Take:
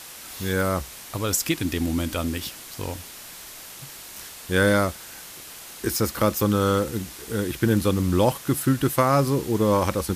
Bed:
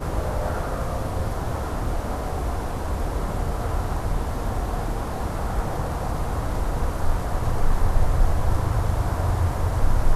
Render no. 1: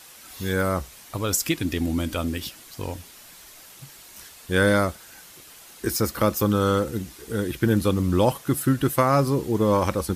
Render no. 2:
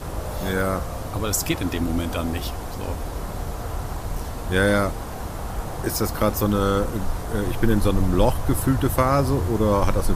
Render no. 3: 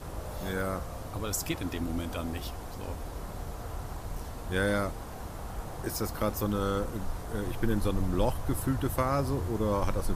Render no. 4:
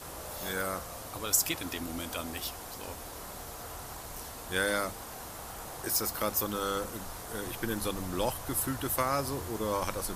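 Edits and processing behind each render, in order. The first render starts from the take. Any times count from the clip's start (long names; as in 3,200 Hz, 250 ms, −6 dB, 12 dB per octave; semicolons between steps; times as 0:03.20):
broadband denoise 7 dB, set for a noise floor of −41 dBFS
mix in bed −4 dB
level −9 dB
spectral tilt +2.5 dB per octave; mains-hum notches 50/100/150/200 Hz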